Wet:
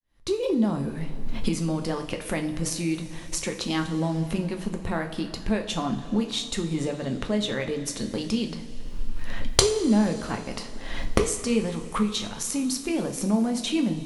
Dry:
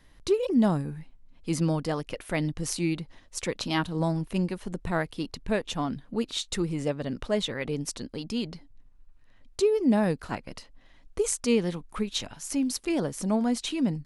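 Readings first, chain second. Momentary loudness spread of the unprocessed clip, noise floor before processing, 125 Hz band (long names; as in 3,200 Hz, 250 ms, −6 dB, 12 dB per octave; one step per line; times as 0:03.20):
12 LU, −56 dBFS, +1.0 dB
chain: fade in at the beginning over 0.96 s
camcorder AGC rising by 50 dB per second
coupled-rooms reverb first 0.4 s, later 3.7 s, from −16 dB, DRR 4 dB
gain into a clipping stage and back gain −1.5 dB
level −2.5 dB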